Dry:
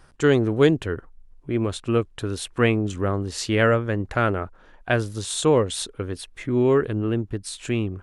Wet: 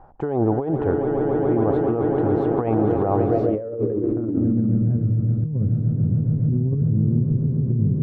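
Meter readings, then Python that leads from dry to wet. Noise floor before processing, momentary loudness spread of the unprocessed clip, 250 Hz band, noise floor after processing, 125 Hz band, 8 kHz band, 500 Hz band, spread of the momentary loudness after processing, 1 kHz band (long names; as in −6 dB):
−52 dBFS, 12 LU, +3.5 dB, −28 dBFS, +6.5 dB, below −40 dB, 0.0 dB, 3 LU, +1.0 dB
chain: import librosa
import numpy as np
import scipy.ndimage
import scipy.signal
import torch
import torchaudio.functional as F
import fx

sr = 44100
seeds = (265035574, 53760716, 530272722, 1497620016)

y = fx.echo_swell(x, sr, ms=139, loudest=8, wet_db=-13.0)
y = fx.filter_sweep_lowpass(y, sr, from_hz=800.0, to_hz=160.0, start_s=3.19, end_s=4.98, q=5.9)
y = fx.over_compress(y, sr, threshold_db=-20.0, ratio=-1.0)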